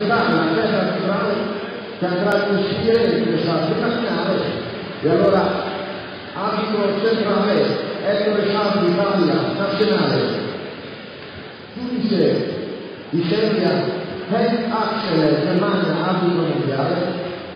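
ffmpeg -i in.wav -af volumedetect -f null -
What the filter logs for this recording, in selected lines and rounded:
mean_volume: -19.4 dB
max_volume: -6.5 dB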